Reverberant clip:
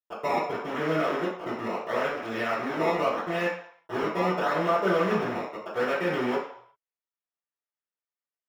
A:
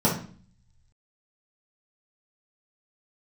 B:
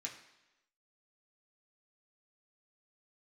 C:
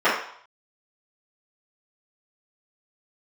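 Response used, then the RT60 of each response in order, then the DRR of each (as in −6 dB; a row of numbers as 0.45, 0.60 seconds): C; 0.45, 1.0, 0.60 seconds; −7.0, −2.0, −15.0 decibels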